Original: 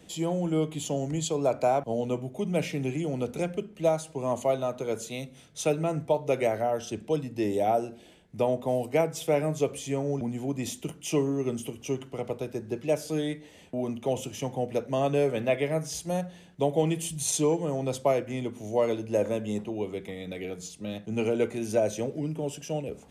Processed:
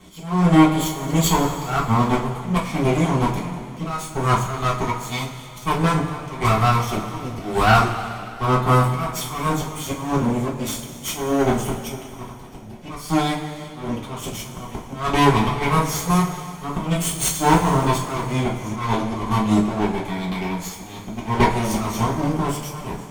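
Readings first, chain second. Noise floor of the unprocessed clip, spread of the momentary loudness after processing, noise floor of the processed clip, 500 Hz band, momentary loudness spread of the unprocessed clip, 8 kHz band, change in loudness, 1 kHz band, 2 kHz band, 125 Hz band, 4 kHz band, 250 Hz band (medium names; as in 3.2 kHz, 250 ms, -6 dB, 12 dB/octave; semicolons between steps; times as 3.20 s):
-52 dBFS, 14 LU, -37 dBFS, +0.5 dB, 8 LU, +7.0 dB, +8.0 dB, +13.0 dB, +13.0 dB, +12.0 dB, +11.0 dB, +9.5 dB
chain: comb filter that takes the minimum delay 0.91 ms; slow attack 221 ms; Chebyshev shaper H 7 -24 dB, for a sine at -16.5 dBFS; two-slope reverb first 0.28 s, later 2.6 s, from -16 dB, DRR -5 dB; trim +9 dB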